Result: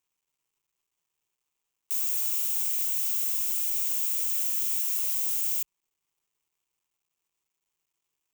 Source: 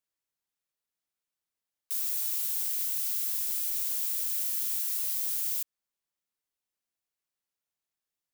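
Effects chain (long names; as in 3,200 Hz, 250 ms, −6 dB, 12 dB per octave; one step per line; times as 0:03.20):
mu-law and A-law mismatch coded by mu
EQ curve with evenly spaced ripples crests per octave 0.71, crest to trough 7 dB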